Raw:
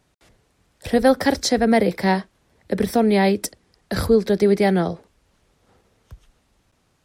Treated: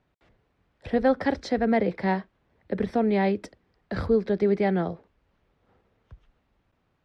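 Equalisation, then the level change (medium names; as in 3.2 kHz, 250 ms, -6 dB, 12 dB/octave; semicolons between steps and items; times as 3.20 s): low-pass 2.7 kHz 12 dB/octave; -6.0 dB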